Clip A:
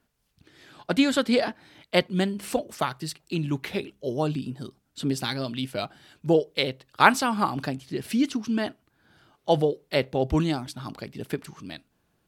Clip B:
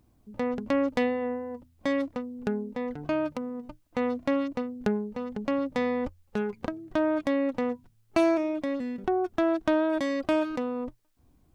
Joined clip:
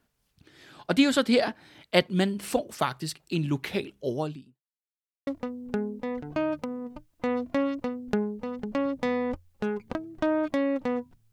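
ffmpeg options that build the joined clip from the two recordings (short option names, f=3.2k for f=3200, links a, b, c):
-filter_complex "[0:a]apad=whole_dur=11.32,atrim=end=11.32,asplit=2[a][b];[a]atrim=end=4.61,asetpts=PTS-STARTPTS,afade=t=out:st=4.11:d=0.5:c=qua[c];[b]atrim=start=4.61:end=5.27,asetpts=PTS-STARTPTS,volume=0[d];[1:a]atrim=start=2:end=8.05,asetpts=PTS-STARTPTS,afade=t=in:d=0.004:c=hsin[e];[c][d][e]concat=n=3:v=0:a=1"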